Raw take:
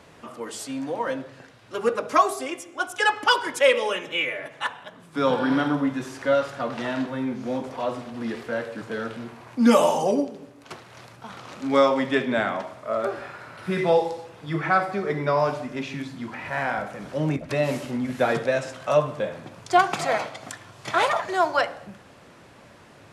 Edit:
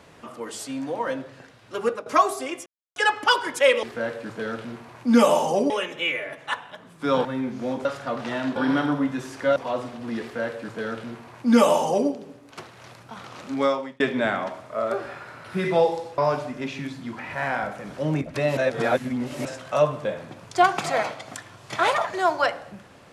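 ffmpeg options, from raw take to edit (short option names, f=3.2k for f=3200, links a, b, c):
-filter_complex "[0:a]asplit=14[a][b][c][d][e][f][g][h][i][j][k][l][m][n];[a]atrim=end=2.06,asetpts=PTS-STARTPTS,afade=t=out:st=1.77:d=0.29:c=qsin:silence=0.16788[o];[b]atrim=start=2.06:end=2.66,asetpts=PTS-STARTPTS,afade=t=in:d=0.004:c=hsin:silence=0.16788,afade=t=out:st=0.596:d=0.004:c=hsin[p];[c]atrim=start=2.66:end=2.96,asetpts=PTS-STARTPTS,volume=0[q];[d]atrim=start=2.96:end=3.832,asetpts=PTS-STARTPTS,afade=t=in:d=0.004:c=hsin[r];[e]atrim=start=8.348:end=10.222[s];[f]atrim=start=3.828:end=5.382[t];[g]atrim=start=7.088:end=7.692[u];[h]atrim=start=6.378:end=7.092[v];[i]atrim=start=5.378:end=6.382[w];[j]atrim=start=7.688:end=12.13,asetpts=PTS-STARTPTS,afade=t=out:st=3.922:d=0.52[x];[k]atrim=start=12.13:end=14.312,asetpts=PTS-STARTPTS,afade=t=in:d=0.004:c=hsin[y];[l]atrim=start=15.328:end=17.722[z];[m]atrim=start=17.718:end=18.602,asetpts=PTS-STARTPTS,areverse[aa];[n]atrim=start=18.598[ab];[o][p][q][r]concat=n=4:v=0:a=1[ac];[ac][s]acrossfade=d=0.004:c1=hsin:c2=hsin[ad];[ad][t]acrossfade=d=0.004:c1=hsin:c2=hsin[ae];[ae][u]acrossfade=d=0.004:c1=hsin:c2=hsin[af];[af][v]acrossfade=d=0.004:c1=hsin:c2=hsin[ag];[ag][w]acrossfade=d=0.004:c1=hsin:c2=hsin[ah];[x][y]concat=n=2:v=0:a=1[ai];[ah][ai]acrossfade=d=0.004:c1=hsin:c2=hsin[aj];[aj][z]acrossfade=d=0.004:c1=hsin:c2=hsin[ak];[ak][aa]acrossfade=d=0.004:c1=hsin:c2=hsin[al];[al][ab]acrossfade=d=0.004:c1=hsin:c2=hsin"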